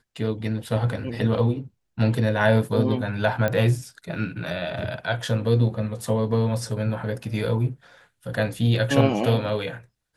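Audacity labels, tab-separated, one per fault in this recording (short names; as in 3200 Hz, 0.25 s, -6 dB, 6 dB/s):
3.480000	3.480000	pop -12 dBFS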